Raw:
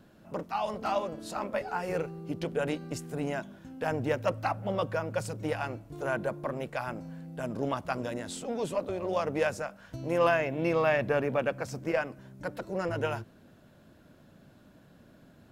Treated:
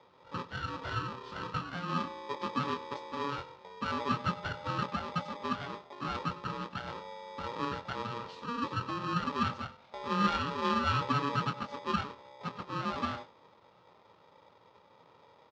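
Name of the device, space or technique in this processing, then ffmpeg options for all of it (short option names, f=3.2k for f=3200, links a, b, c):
ring modulator pedal into a guitar cabinet: -filter_complex "[0:a]lowpass=5k,equalizer=f=1.1k:t=o:w=0.77:g=-8.5,asplit=2[a][b];[b]adelay=24,volume=-9dB[c];[a][c]amix=inputs=2:normalize=0,aeval=exprs='val(0)*sgn(sin(2*PI*710*n/s))':c=same,highpass=83,equalizer=f=110:t=q:w=4:g=6,equalizer=f=180:t=q:w=4:g=6,equalizer=f=270:t=q:w=4:g=4,equalizer=f=1.2k:t=q:w=4:g=5,equalizer=f=2.2k:t=q:w=4:g=-6,lowpass=f=4.6k:w=0.5412,lowpass=f=4.6k:w=1.3066,aecho=1:1:98:0.106,volume=-4.5dB"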